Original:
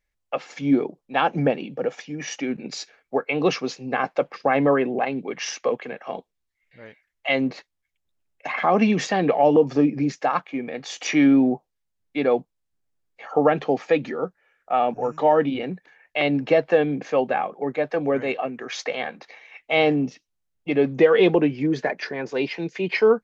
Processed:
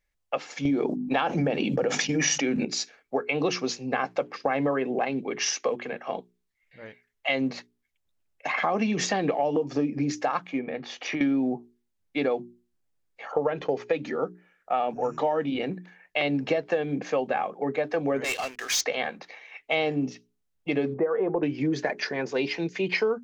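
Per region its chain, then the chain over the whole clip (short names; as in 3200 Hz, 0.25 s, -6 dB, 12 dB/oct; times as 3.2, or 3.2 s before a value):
0.65–2.65 expander -37 dBFS + notches 50/100/150/200/250/300 Hz + fast leveller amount 70%
10.59–11.21 compressor 5:1, threshold -24 dBFS + air absorption 230 m
13.32–13.93 comb 2 ms, depth 40% + gate -39 dBFS, range -18 dB + high shelf 5900 Hz -7.5 dB
18.24–18.81 differentiator + sample leveller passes 5
20.94–21.43 LPF 1300 Hz 24 dB/oct + bell 180 Hz -7 dB 2.6 oct
whole clip: notches 60/120/180/240/300/360/420 Hz; dynamic EQ 6300 Hz, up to +6 dB, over -48 dBFS, Q 1.1; compressor 6:1, threshold -22 dBFS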